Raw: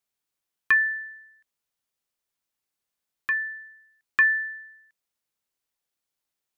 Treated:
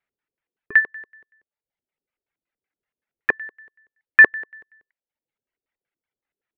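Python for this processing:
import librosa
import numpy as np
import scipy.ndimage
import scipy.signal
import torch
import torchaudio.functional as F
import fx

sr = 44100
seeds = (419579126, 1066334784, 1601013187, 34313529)

y = fx.dereverb_blind(x, sr, rt60_s=1.1)
y = fx.filter_lfo_lowpass(y, sr, shape='square', hz=5.3, low_hz=430.0, high_hz=2000.0, q=2.4)
y = fx.notch(y, sr, hz=1100.0, q=16.0)
y = y * 10.0 ** (3.0 / 20.0)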